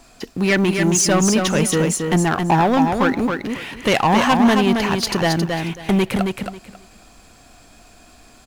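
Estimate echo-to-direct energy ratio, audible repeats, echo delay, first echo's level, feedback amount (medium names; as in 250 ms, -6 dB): -5.0 dB, 3, 271 ms, -5.0 dB, 20%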